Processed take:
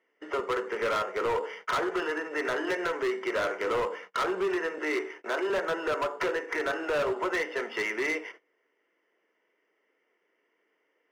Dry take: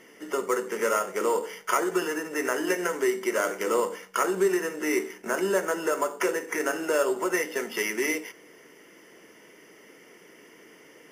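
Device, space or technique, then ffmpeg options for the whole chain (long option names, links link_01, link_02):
walkie-talkie: -filter_complex "[0:a]highpass=430,lowpass=2600,asoftclip=type=hard:threshold=-26.5dB,agate=range=-21dB:threshold=-48dB:ratio=16:detection=peak,asettb=1/sr,asplit=3[link_01][link_02][link_03];[link_01]atrim=end=4.784[link_04];[link_02]atrim=start=4.78:end=5.5,asetpts=PTS-STARTPTS,afade=type=in:duration=0.004:curve=qsin,afade=type=out:start_time=0.716:duration=0.004:curve=qsin,highpass=frequency=250:width=0.5412,highpass=frequency=250:width=1.3066[link_05];[link_03]atrim=start=5.496[link_06];[link_04][link_05]acrossfade=duration=0.004:curve1=hsin:curve2=qsin[link_07];[link_07][link_06]acrossfade=duration=0.004:curve1=qsin:curve2=hsin,volume=2dB"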